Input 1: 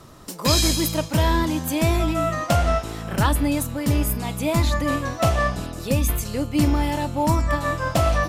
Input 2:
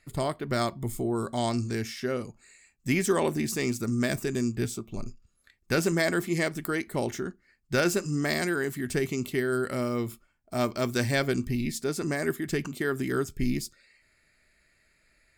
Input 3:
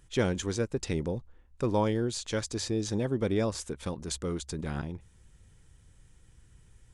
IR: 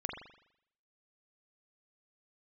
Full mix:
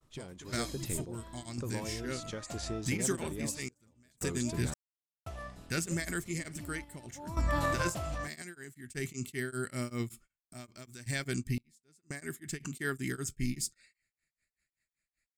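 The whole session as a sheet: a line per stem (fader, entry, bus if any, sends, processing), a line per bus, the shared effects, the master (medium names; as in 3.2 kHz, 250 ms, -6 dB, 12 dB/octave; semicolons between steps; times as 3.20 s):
-13.5 dB, 0.00 s, bus A, no send, auto duck -19 dB, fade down 0.40 s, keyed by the third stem
-12.5 dB, 0.00 s, bus A, no send, graphic EQ 125/500/1000/2000/8000 Hz +4/-6/-4/+4/+11 dB; tremolo of two beating tones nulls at 5.2 Hz
-4.0 dB, 0.00 s, no bus, no send, compression, threshold -30 dBFS, peak gain reduction 9 dB
bus A: 0.0 dB, level rider gain up to 10 dB; peak limiter -20.5 dBFS, peak gain reduction 8.5 dB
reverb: none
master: expander -55 dBFS; random-step tremolo 1.9 Hz, depth 100%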